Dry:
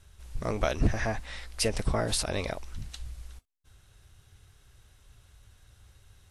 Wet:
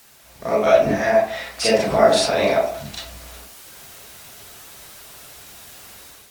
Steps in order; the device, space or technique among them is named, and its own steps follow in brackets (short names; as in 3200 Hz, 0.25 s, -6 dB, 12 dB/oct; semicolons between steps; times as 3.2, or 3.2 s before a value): filmed off a television (BPF 230–7400 Hz; bell 670 Hz +12 dB 0.21 oct; reverb RT60 0.50 s, pre-delay 30 ms, DRR -9.5 dB; white noise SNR 26 dB; AGC gain up to 8.5 dB; gain -1 dB; AAC 96 kbps 48000 Hz)